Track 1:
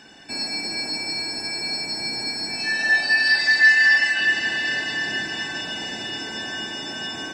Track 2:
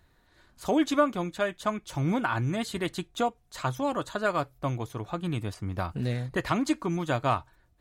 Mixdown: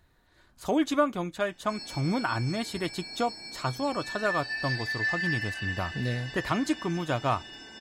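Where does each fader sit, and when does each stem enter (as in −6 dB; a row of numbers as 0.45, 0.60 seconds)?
−15.0, −1.0 decibels; 1.40, 0.00 seconds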